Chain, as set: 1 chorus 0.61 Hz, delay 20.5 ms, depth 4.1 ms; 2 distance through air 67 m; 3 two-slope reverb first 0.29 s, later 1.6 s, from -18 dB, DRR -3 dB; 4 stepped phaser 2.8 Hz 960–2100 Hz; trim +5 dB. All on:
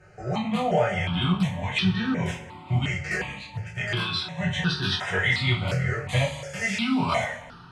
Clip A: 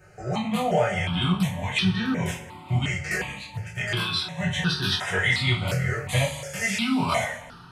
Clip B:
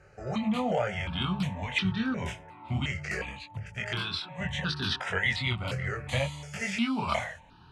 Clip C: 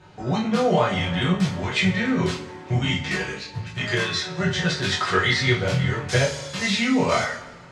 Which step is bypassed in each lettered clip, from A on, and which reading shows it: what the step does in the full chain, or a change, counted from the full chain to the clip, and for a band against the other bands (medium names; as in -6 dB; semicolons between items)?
2, 8 kHz band +5.5 dB; 3, loudness change -5.0 LU; 4, 8 kHz band +4.5 dB